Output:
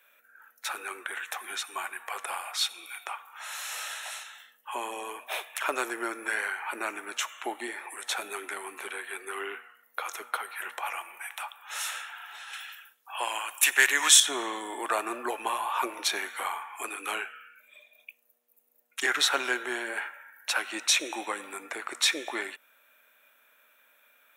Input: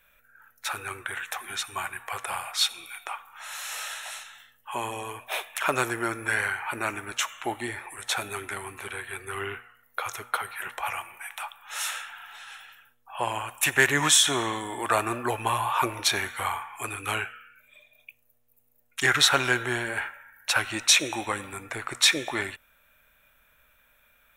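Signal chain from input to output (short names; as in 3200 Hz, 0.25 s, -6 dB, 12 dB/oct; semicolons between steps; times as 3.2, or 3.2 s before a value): 12.53–14.2 tilt shelf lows -8 dB, about 860 Hz; in parallel at +1 dB: compressor, threshold -36 dBFS, peak gain reduction 25.5 dB; on the sum: HPF 280 Hz 24 dB/oct; gain -6 dB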